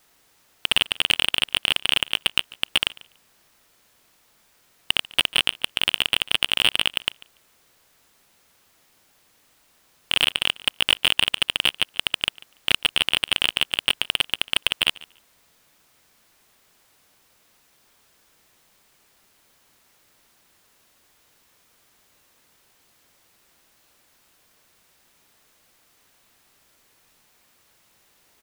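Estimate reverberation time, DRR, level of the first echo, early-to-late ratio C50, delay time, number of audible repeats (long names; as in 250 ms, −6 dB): no reverb audible, no reverb audible, −22.0 dB, no reverb audible, 144 ms, 1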